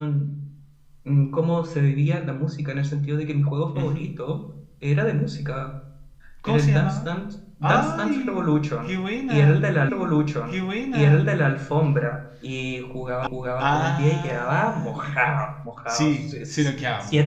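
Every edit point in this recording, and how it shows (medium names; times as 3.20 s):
9.89 s: repeat of the last 1.64 s
13.27 s: repeat of the last 0.37 s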